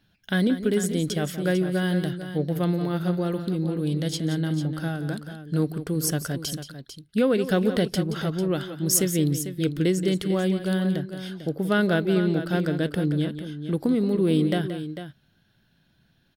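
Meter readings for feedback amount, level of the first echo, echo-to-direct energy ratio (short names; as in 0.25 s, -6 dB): no steady repeat, -12.0 dB, -8.5 dB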